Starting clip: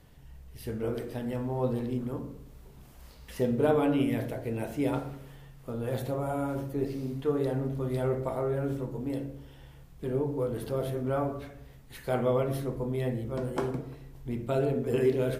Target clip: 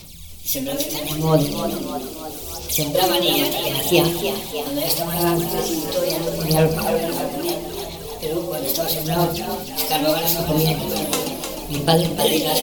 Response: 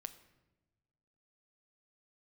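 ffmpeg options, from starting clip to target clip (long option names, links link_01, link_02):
-filter_complex "[0:a]aphaser=in_gain=1:out_gain=1:delay=4.8:decay=0.67:speed=0.62:type=sinusoidal,asplit=8[link_01][link_02][link_03][link_04][link_05][link_06][link_07][link_08];[link_02]adelay=373,afreqshift=42,volume=-8dB[link_09];[link_03]adelay=746,afreqshift=84,volume=-12.6dB[link_10];[link_04]adelay=1119,afreqshift=126,volume=-17.2dB[link_11];[link_05]adelay=1492,afreqshift=168,volume=-21.7dB[link_12];[link_06]adelay=1865,afreqshift=210,volume=-26.3dB[link_13];[link_07]adelay=2238,afreqshift=252,volume=-30.9dB[link_14];[link_08]adelay=2611,afreqshift=294,volume=-35.5dB[link_15];[link_01][link_09][link_10][link_11][link_12][link_13][link_14][link_15]amix=inputs=8:normalize=0,asetrate=53802,aresample=44100,aexciter=amount=7:drive=7.4:freq=2600,asplit=2[link_16][link_17];[1:a]atrim=start_sample=2205[link_18];[link_17][link_18]afir=irnorm=-1:irlink=0,volume=9dB[link_19];[link_16][link_19]amix=inputs=2:normalize=0,volume=-5dB"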